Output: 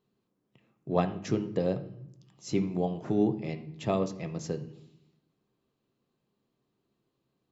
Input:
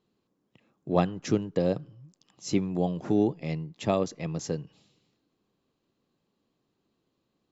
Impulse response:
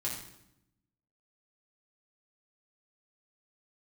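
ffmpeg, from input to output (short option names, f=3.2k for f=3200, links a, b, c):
-filter_complex "[0:a]asplit=2[a][b];[1:a]atrim=start_sample=2205,asetrate=48510,aresample=44100,lowpass=3.9k[c];[b][c]afir=irnorm=-1:irlink=0,volume=-7dB[d];[a][d]amix=inputs=2:normalize=0,volume=-5dB"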